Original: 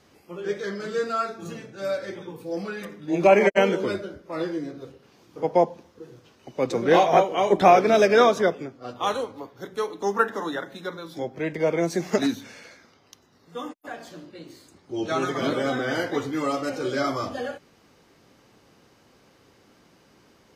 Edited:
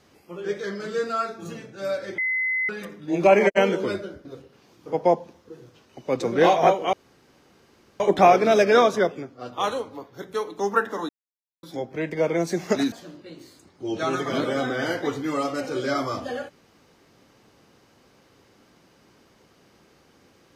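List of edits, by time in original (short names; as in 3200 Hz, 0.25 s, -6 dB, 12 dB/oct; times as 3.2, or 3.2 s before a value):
2.18–2.69 bleep 2040 Hz -21.5 dBFS
4.25–4.75 cut
7.43 insert room tone 1.07 s
10.52–11.06 mute
12.35–14.01 cut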